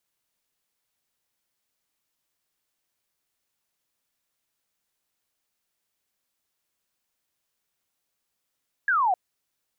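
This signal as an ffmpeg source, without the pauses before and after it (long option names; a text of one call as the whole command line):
ffmpeg -f lavfi -i "aevalsrc='0.112*clip(t/0.002,0,1)*clip((0.26-t)/0.002,0,1)*sin(2*PI*1700*0.26/log(700/1700)*(exp(log(700/1700)*t/0.26)-1))':duration=0.26:sample_rate=44100" out.wav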